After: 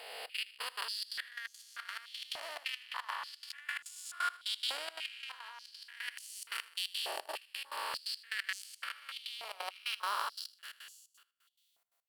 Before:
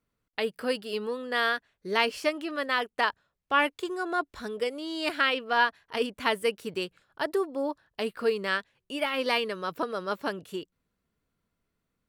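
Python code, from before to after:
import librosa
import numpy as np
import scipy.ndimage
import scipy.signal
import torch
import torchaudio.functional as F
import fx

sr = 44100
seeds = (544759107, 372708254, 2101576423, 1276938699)

y = fx.spec_blur(x, sr, span_ms=841.0)
y = fx.cheby_harmonics(y, sr, harmonics=(7,), levels_db=(-29,), full_scale_db=-19.5)
y = fx.tilt_eq(y, sr, slope=4.0)
y = 10.0 ** (-20.5 / 20.0) * np.tanh(y / 10.0 ** (-20.5 / 20.0))
y = fx.step_gate(y, sr, bpm=175, pattern='xxx.x..x.', floor_db=-24.0, edge_ms=4.5)
y = fx.over_compress(y, sr, threshold_db=-42.0, ratio=-0.5)
y = y + 10.0 ** (-19.0 / 20.0) * np.pad(y, (int(80 * sr / 1000.0), 0))[:len(y)]
y = fx.filter_held_highpass(y, sr, hz=3.4, low_hz=730.0, high_hz=6500.0)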